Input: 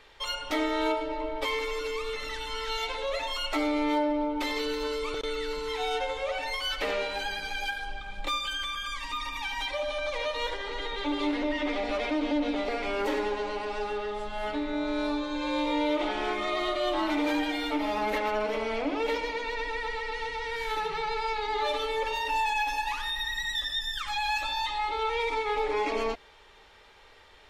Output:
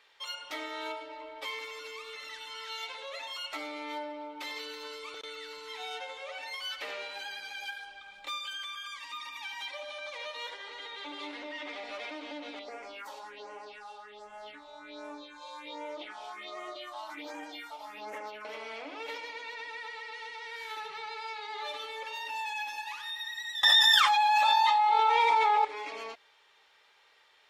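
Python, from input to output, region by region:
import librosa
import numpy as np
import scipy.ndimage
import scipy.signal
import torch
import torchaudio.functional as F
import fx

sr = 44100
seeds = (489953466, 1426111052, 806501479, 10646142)

y = fx.chain(x, sr, fx.hum_notches(base_hz=50, count=8),
    fx.phaser_stages(stages=4, low_hz=310.0, high_hz=4000.0, hz=1.3, feedback_pct=25), at=(12.59, 18.45))
y = fx.chain(y, sr, fx.peak_eq(hz=810.0, db=14.5, octaves=0.92),
    fx.doubler(ms=31.0, db=-13),
    fx.env_flatten(amount_pct=100), at=(23.63, 25.65))
y = fx.highpass(y, sr, hz=1200.0, slope=6)
y = fx.peak_eq(y, sr, hz=9000.0, db=-2.0, octaves=0.77)
y = y * 10.0 ** (-5.0 / 20.0)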